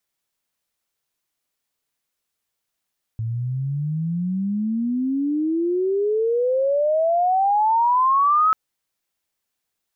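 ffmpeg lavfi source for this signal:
ffmpeg -f lavfi -i "aevalsrc='pow(10,(-22.5+9*t/5.34)/20)*sin(2*PI*110*5.34/log(1300/110)*(exp(log(1300/110)*t/5.34)-1))':duration=5.34:sample_rate=44100" out.wav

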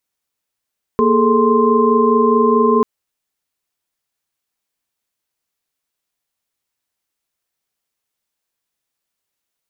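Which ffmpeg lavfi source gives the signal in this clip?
ffmpeg -f lavfi -i "aevalsrc='0.168*(sin(2*PI*233.08*t)+sin(2*PI*415.3*t)+sin(2*PI*440*t)+sin(2*PI*1046.5*t))':duration=1.84:sample_rate=44100" out.wav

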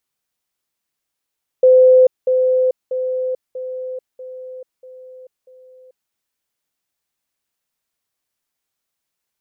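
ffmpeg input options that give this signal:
ffmpeg -f lavfi -i "aevalsrc='pow(10,(-6-6*floor(t/0.64))/20)*sin(2*PI*512*t)*clip(min(mod(t,0.64),0.44-mod(t,0.64))/0.005,0,1)':duration=4.48:sample_rate=44100" out.wav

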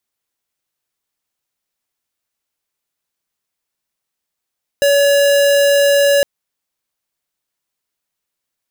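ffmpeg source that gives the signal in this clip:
ffmpeg -f lavfi -i "aevalsrc='0.266*(2*lt(mod(566*t,1),0.5)-1)':duration=1.41:sample_rate=44100" out.wav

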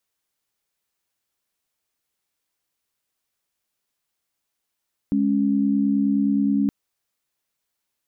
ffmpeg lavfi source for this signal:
ffmpeg -f lavfi -i "aevalsrc='0.1*(sin(2*PI*207.65*t)+sin(2*PI*277.18*t))':duration=1.57:sample_rate=44100" out.wav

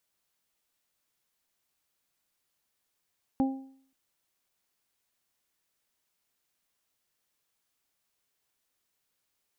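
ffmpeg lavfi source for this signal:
ffmpeg -f lavfi -i "aevalsrc='0.0944*pow(10,-3*t/0.58)*sin(2*PI*267*t)+0.0211*pow(10,-3*t/0.47)*sin(2*PI*534*t)+0.0316*pow(10,-3*t/0.46)*sin(2*PI*801*t)':duration=0.53:sample_rate=44100" out.wav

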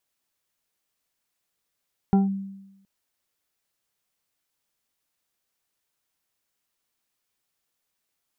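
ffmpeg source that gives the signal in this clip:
ffmpeg -f lavfi -i "aevalsrc='0.224*pow(10,-3*t/0.95)*sin(2*PI*195*t+0.55*clip(1-t/0.16,0,1)*sin(2*PI*3.02*195*t))':duration=0.72:sample_rate=44100" out.wav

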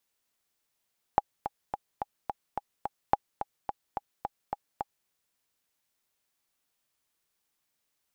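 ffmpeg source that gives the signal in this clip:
ffmpeg -f lavfi -i "aevalsrc='pow(10,(-7.5-10.5*gte(mod(t,7*60/215),60/215))/20)*sin(2*PI*819*mod(t,60/215))*exp(-6.91*mod(t,60/215)/0.03)':duration=3.9:sample_rate=44100" out.wav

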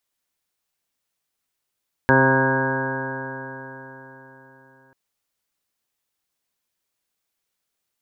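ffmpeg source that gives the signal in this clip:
ffmpeg -f lavfi -i "aevalsrc='0.1*pow(10,-3*t/4.06)*sin(2*PI*132.03*t)+0.112*pow(10,-3*t/4.06)*sin(2*PI*264.24*t)+0.0891*pow(10,-3*t/4.06)*sin(2*PI*396.8*t)+0.1*pow(10,-3*t/4.06)*sin(2*PI*529.9*t)+0.0422*pow(10,-3*t/4.06)*sin(2*PI*663.7*t)+0.0422*pow(10,-3*t/4.06)*sin(2*PI*798.39*t)+0.112*pow(10,-3*t/4.06)*sin(2*PI*934.13*t)+0.0355*pow(10,-3*t/4.06)*sin(2*PI*1071.1*t)+0.0224*pow(10,-3*t/4.06)*sin(2*PI*1209.46*t)+0.0178*pow(10,-3*t/4.06)*sin(2*PI*1349.37*t)+0.0668*pow(10,-3*t/4.06)*sin(2*PI*1491.01*t)+0.141*pow(10,-3*t/4.06)*sin(2*PI*1634.52*t)':duration=2.84:sample_rate=44100" out.wav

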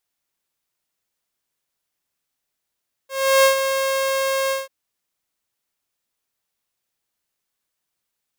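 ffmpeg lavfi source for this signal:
ffmpeg -f lavfi -i "aevalsrc='0.398*(2*mod(538*t,1)-1)':duration=1.59:sample_rate=44100,afade=type=in:duration=0.348,afade=type=out:start_time=0.348:duration=0.113:silence=0.376,afade=type=out:start_time=1.42:duration=0.17" out.wav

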